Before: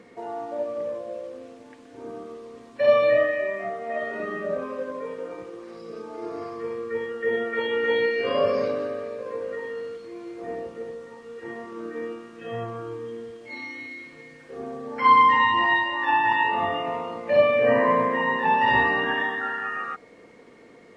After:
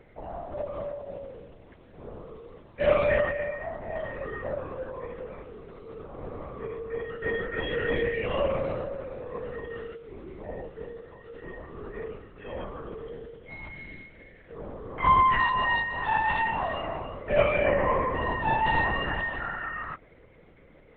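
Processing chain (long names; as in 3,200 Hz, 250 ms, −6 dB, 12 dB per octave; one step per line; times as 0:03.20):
linear-prediction vocoder at 8 kHz whisper
level −4.5 dB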